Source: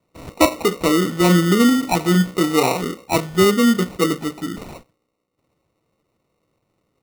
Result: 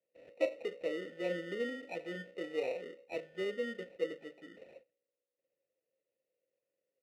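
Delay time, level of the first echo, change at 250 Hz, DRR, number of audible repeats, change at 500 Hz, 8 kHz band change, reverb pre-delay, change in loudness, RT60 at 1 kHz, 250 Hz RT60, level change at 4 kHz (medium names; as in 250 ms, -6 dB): no echo, no echo, -28.0 dB, no reverb, no echo, -16.5 dB, under -35 dB, no reverb, -21.5 dB, no reverb, no reverb, -25.0 dB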